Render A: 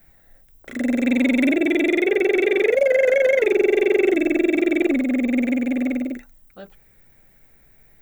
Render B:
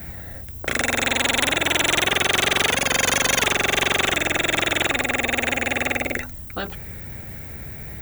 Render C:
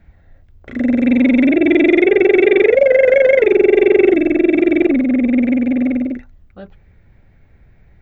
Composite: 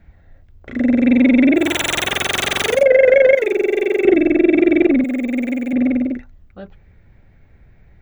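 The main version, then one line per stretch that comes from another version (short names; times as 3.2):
C
1.65–2.75 from B, crossfade 0.24 s
3.35–4.05 from A
5.04–5.73 from A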